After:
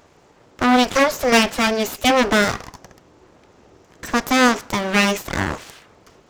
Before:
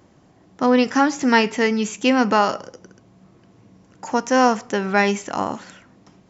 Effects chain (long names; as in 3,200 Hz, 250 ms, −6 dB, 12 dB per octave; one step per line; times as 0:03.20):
dynamic equaliser 1,300 Hz, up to −4 dB, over −31 dBFS, Q 2.4
full-wave rectification
high-pass filter 81 Hz 6 dB per octave
level +6 dB